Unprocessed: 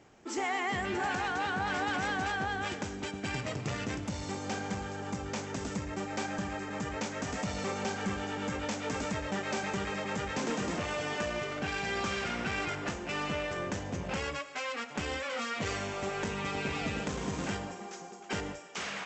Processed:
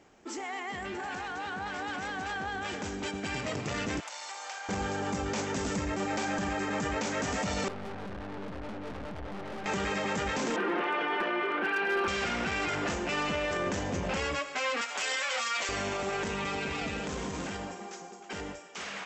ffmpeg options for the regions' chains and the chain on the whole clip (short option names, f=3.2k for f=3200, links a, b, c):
-filter_complex "[0:a]asettb=1/sr,asplit=3[a][b][c];[a]atrim=end=4.004[d];[b]atrim=start=4:end=4.69,asetpts=PTS-STARTPTS,afade=t=in:d=0.004:c=qsin,afade=t=out:st=0.686:d=0.004:c=qsin,highpass=f=730:w=0.5412,highpass=f=730:w=1.3066,acompressor=threshold=-44dB:ratio=4:attack=3.2:release=140:knee=1:detection=peak[e];[c]atrim=start=4.686[f];[d][e]acrossfade=d=0.004:c1=hsin:c2=qsin[g];[g][f]acrossfade=d=0.004:c1=qsin:c2=hsin,asettb=1/sr,asplit=3[h][i][j];[h]atrim=end=7.684[k];[i]atrim=start=7.68:end=9.66,asetpts=PTS-STARTPTS,afade=t=in:d=0.004:c=qsin,afade=t=out:st=1.976:d=0.004:c=qsin,lowpass=1.1k,lowshelf=f=170:g=9,aeval=exprs='(tanh(178*val(0)+0.6)-tanh(0.6))/178':c=same[l];[j]atrim=start=9.656[m];[k][l]acrossfade=d=0.004:c1=hsin:c2=qsin[n];[n][m]acrossfade=d=0.004:c1=qsin:c2=hsin,asettb=1/sr,asplit=3[o][p][q];[o]atrim=end=10.564[r];[p]atrim=start=10.56:end=12.08,asetpts=PTS-STARTPTS,afade=t=in:d=0.004:c=qsin,afade=t=out:st=1.516:d=0.004:c=qsin,highpass=f=250:w=0.5412,highpass=f=250:w=1.3066,equalizer=f=380:t=q:w=4:g=8,equalizer=f=600:t=q:w=4:g=-3,equalizer=f=910:t=q:w=4:g=5,equalizer=f=1.5k:t=q:w=4:g=7,lowpass=f=3.1k:w=0.5412,lowpass=f=3.1k:w=1.3066,aecho=1:1:5.8:0.44,atrim=end_sample=67032,asoftclip=type=hard:threshold=-24dB[s];[q]atrim=start=12.076[t];[r][s]acrossfade=d=0.004:c1=hsin:c2=qsin[u];[u][t]acrossfade=d=0.004:c1=qsin:c2=hsin,asettb=1/sr,asplit=3[v][w][x];[v]atrim=end=14.814[y];[w]atrim=start=14.81:end=15.69,asetpts=PTS-STARTPTS,afade=t=in:d=0.004:c=qsin,afade=t=out:st=0.876:d=0.004:c=qsin,highpass=670,highshelf=f=4.8k:g=9,asplit=2[z][aa];[aa]adelay=12,volume=-6dB[ab];[z][ab]amix=inputs=2:normalize=0,atrim=end_sample=38808[ac];[x]atrim=start=15.686[ad];[y][ac]acrossfade=d=0.004:c1=hsin:c2=qsin[ae];[ae][ad]acrossfade=d=0.004:c1=qsin:c2=hsin,equalizer=f=120:w=2.1:g=-7,alimiter=level_in=6dB:limit=-24dB:level=0:latency=1:release=15,volume=-6dB,dynaudnorm=f=550:g=11:m=7dB"